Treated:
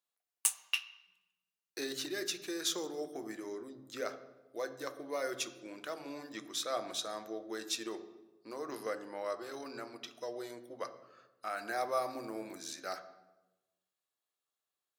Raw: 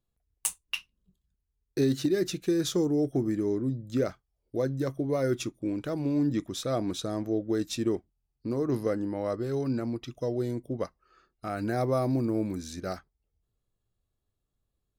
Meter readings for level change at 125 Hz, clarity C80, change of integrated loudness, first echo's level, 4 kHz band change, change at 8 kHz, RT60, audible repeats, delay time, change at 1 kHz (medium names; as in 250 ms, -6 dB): -29.0 dB, 14.5 dB, -9.0 dB, no echo, 0.0 dB, 0.0 dB, 1.1 s, no echo, no echo, -2.0 dB